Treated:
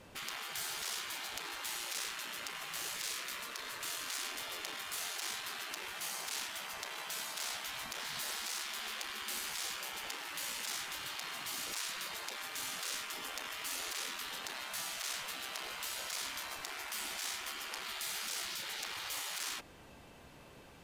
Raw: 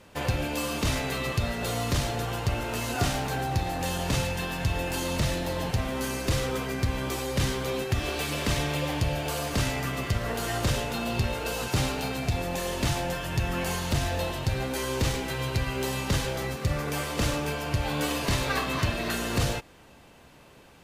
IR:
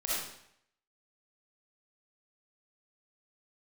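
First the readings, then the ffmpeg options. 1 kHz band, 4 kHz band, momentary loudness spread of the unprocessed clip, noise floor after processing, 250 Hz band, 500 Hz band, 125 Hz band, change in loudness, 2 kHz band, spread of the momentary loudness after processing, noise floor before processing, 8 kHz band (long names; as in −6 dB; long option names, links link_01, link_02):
−12.5 dB, −5.0 dB, 2 LU, −56 dBFS, −26.5 dB, −22.0 dB, −36.5 dB, −10.0 dB, −8.0 dB, 4 LU, −53 dBFS, −3.5 dB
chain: -af "aeval=exprs='(tanh(15.8*val(0)+0.6)-tanh(0.6))/15.8':channel_layout=same,afftfilt=real='re*lt(hypot(re,im),0.0282)':imag='im*lt(hypot(re,im),0.0282)':win_size=1024:overlap=0.75"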